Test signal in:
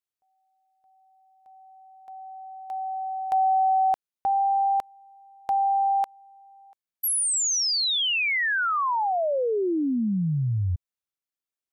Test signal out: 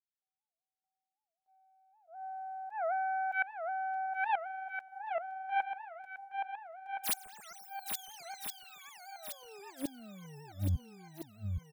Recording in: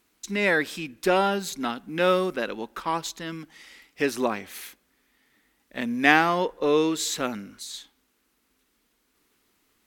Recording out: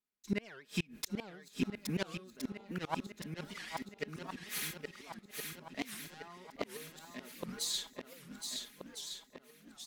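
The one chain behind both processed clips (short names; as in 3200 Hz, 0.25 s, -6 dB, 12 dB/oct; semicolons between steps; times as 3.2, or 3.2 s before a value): self-modulated delay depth 0.26 ms; gate -49 dBFS, range -31 dB; bell 140 Hz +5 dB 0.58 oct; comb 4.8 ms, depth 67%; auto swell 0.163 s; flipped gate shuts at -22 dBFS, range -32 dB; swung echo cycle 1.368 s, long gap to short 1.5:1, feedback 46%, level -5 dB; record warp 78 rpm, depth 250 cents; gain +1 dB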